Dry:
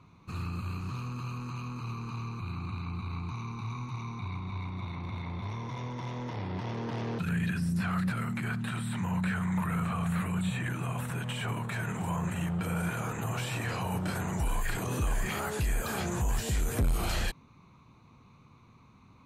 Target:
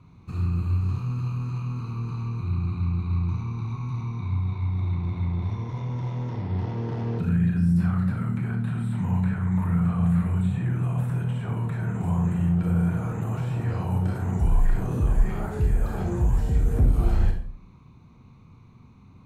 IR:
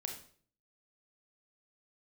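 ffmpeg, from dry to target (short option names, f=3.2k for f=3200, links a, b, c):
-filter_complex "[0:a]lowshelf=f=270:g=11,acrossover=split=1500[a][b];[b]acompressor=threshold=-51dB:ratio=6[c];[a][c]amix=inputs=2:normalize=0[d];[1:a]atrim=start_sample=2205[e];[d][e]afir=irnorm=-1:irlink=0"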